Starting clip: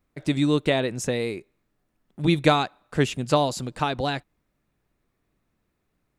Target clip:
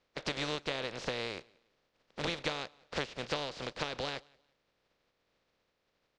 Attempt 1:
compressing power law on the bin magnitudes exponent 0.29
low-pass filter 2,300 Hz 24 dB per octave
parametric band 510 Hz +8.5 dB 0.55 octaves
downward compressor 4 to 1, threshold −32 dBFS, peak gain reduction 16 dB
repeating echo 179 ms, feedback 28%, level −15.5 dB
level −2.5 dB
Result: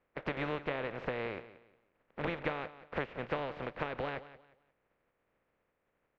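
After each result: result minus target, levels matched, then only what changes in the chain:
4,000 Hz band −11.0 dB; echo-to-direct +11.5 dB
change: low-pass filter 5,000 Hz 24 dB per octave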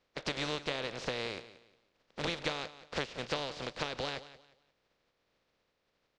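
echo-to-direct +11.5 dB
change: repeating echo 179 ms, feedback 28%, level −27 dB

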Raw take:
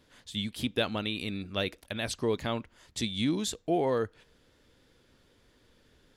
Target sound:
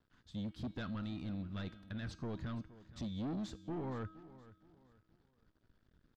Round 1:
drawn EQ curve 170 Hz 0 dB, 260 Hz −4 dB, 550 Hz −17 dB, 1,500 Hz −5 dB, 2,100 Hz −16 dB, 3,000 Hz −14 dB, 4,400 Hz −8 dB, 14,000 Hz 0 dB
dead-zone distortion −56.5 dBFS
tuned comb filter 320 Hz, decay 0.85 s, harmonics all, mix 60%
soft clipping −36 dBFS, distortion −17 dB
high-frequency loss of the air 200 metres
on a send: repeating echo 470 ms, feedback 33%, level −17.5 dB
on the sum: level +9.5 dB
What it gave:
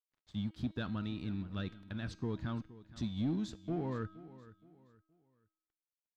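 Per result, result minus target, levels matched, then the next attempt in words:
soft clipping: distortion −9 dB; dead-zone distortion: distortion +8 dB
drawn EQ curve 170 Hz 0 dB, 260 Hz −4 dB, 550 Hz −17 dB, 1,500 Hz −5 dB, 2,100 Hz −16 dB, 3,000 Hz −14 dB, 4,400 Hz −8 dB, 14,000 Hz 0 dB
dead-zone distortion −56.5 dBFS
tuned comb filter 320 Hz, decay 0.85 s, harmonics all, mix 60%
soft clipping −45.5 dBFS, distortion −8 dB
high-frequency loss of the air 200 metres
on a send: repeating echo 470 ms, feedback 33%, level −17.5 dB
on the sum: level +9.5 dB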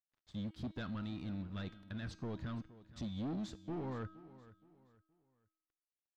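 dead-zone distortion: distortion +8 dB
drawn EQ curve 170 Hz 0 dB, 260 Hz −4 dB, 550 Hz −17 dB, 1,500 Hz −5 dB, 2,100 Hz −16 dB, 3,000 Hz −14 dB, 4,400 Hz −8 dB, 14,000 Hz 0 dB
dead-zone distortion −67 dBFS
tuned comb filter 320 Hz, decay 0.85 s, harmonics all, mix 60%
soft clipping −45.5 dBFS, distortion −8 dB
high-frequency loss of the air 200 metres
on a send: repeating echo 470 ms, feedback 33%, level −17.5 dB
on the sum: level +9.5 dB

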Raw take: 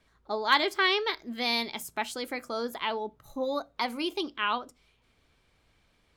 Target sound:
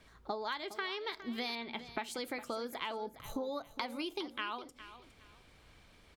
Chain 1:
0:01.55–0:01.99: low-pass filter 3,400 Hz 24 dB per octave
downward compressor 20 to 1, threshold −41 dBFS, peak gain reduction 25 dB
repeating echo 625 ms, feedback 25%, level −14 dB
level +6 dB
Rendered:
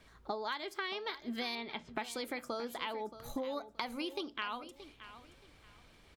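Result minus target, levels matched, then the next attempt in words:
echo 214 ms late
0:01.55–0:01.99: low-pass filter 3,400 Hz 24 dB per octave
downward compressor 20 to 1, threshold −41 dBFS, peak gain reduction 25 dB
repeating echo 411 ms, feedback 25%, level −14 dB
level +6 dB

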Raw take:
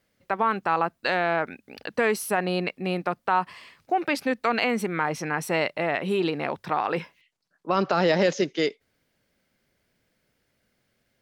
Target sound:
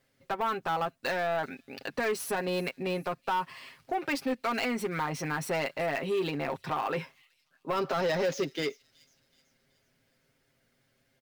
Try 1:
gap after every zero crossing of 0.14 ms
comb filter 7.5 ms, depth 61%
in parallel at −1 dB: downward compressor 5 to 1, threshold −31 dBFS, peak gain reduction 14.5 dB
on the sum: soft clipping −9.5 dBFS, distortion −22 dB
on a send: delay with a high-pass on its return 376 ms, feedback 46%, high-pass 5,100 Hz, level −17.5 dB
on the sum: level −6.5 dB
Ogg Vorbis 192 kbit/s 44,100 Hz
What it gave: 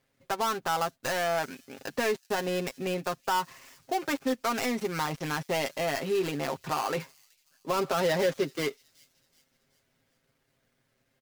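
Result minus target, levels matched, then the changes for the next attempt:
gap after every zero crossing: distortion +17 dB; soft clipping: distortion −9 dB
change: gap after every zero crossing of 0.026 ms
change: soft clipping −16.5 dBFS, distortion −13 dB

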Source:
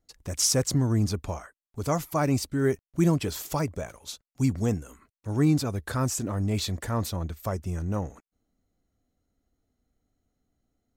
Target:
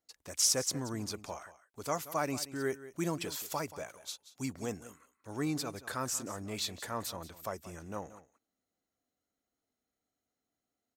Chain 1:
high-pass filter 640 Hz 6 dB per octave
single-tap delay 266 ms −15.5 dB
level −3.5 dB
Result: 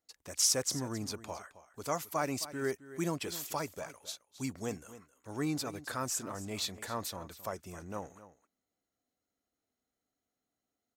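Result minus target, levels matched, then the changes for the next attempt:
echo 86 ms late
change: single-tap delay 180 ms −15.5 dB

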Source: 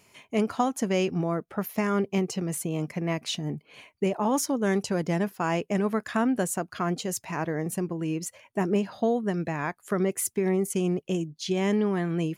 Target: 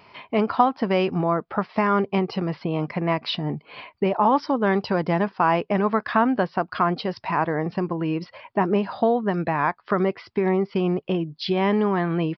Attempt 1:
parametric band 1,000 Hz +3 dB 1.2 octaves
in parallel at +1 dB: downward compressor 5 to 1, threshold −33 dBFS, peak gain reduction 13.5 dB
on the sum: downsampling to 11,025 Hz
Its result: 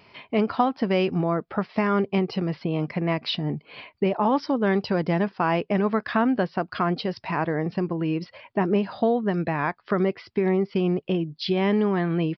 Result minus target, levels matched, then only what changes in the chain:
1,000 Hz band −3.5 dB
change: parametric band 1,000 Hz +9.5 dB 1.2 octaves

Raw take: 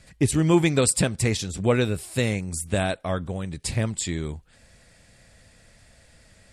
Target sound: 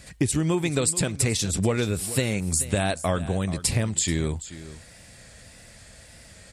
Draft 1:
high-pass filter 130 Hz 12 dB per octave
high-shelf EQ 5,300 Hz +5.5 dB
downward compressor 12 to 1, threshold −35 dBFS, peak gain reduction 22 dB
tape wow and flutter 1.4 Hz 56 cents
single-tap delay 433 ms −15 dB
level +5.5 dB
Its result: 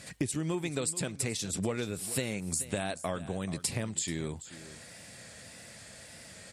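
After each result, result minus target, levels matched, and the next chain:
downward compressor: peak gain reduction +9 dB; 125 Hz band −2.5 dB
high-pass filter 130 Hz 12 dB per octave
high-shelf EQ 5,300 Hz +5.5 dB
downward compressor 12 to 1, threshold −25 dBFS, peak gain reduction 13 dB
tape wow and flutter 1.4 Hz 56 cents
single-tap delay 433 ms −15 dB
level +5.5 dB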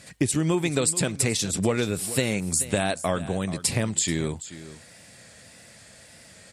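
125 Hz band −2.5 dB
high-pass filter 34 Hz 12 dB per octave
high-shelf EQ 5,300 Hz +5.5 dB
downward compressor 12 to 1, threshold −25 dBFS, peak gain reduction 13 dB
tape wow and flutter 1.4 Hz 56 cents
single-tap delay 433 ms −15 dB
level +5.5 dB

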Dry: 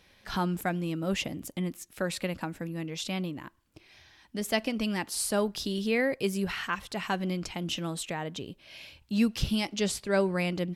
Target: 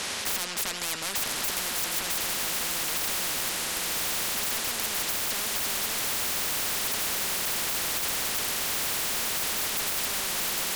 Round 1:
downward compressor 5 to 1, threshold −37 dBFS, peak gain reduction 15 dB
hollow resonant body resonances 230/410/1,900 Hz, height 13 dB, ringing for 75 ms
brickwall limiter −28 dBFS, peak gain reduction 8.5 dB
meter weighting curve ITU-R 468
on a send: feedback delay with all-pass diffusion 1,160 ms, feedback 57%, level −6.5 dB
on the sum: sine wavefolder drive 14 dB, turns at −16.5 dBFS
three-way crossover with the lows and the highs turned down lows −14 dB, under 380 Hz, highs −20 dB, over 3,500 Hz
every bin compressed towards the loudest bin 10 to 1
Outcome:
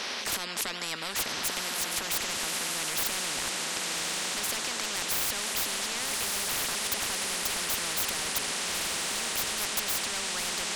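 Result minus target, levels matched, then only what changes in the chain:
sine wavefolder: distortion −12 dB
change: sine wavefolder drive 24 dB, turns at −16.5 dBFS

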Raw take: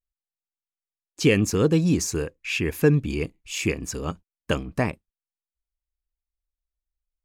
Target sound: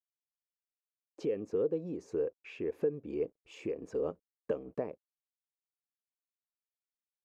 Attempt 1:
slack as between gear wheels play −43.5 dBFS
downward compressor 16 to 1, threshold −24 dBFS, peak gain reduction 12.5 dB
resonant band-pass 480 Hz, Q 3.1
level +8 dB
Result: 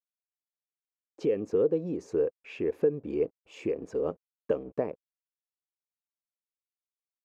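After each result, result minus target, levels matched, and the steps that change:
downward compressor: peak gain reduction −6 dB; slack as between gear wheels: distortion +8 dB
change: downward compressor 16 to 1, threshold −30.5 dBFS, peak gain reduction 19 dB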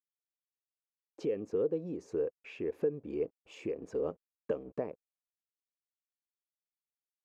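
slack as between gear wheels: distortion +8 dB
change: slack as between gear wheels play −52 dBFS

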